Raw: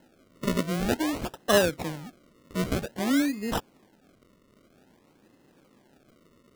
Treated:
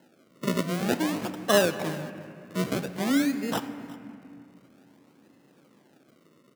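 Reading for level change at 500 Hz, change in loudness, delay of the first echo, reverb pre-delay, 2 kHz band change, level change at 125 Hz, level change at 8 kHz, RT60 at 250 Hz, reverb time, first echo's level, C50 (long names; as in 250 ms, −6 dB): +0.5 dB, 0.0 dB, 363 ms, 3 ms, +0.5 dB, 0.0 dB, +0.5 dB, 3.7 s, 2.3 s, −19.5 dB, 10.5 dB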